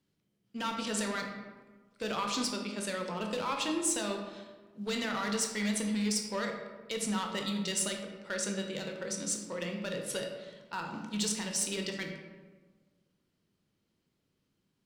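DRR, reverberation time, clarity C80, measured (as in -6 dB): 2.0 dB, 1.4 s, 6.5 dB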